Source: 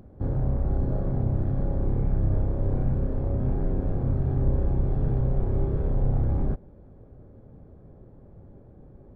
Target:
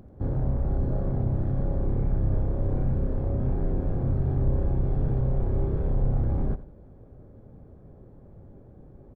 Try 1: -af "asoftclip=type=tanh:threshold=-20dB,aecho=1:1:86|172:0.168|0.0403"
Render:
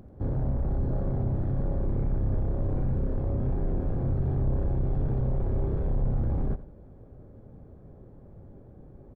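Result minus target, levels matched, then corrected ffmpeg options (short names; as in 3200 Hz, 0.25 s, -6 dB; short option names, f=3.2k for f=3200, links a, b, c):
soft clip: distortion +11 dB
-af "asoftclip=type=tanh:threshold=-12.5dB,aecho=1:1:86|172:0.168|0.0403"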